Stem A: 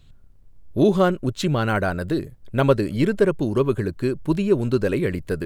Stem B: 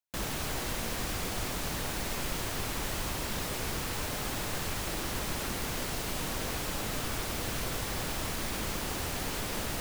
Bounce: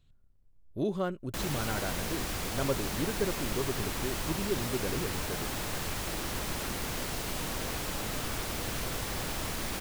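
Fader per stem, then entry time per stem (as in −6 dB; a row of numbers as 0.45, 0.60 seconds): −14.0, −0.5 decibels; 0.00, 1.20 seconds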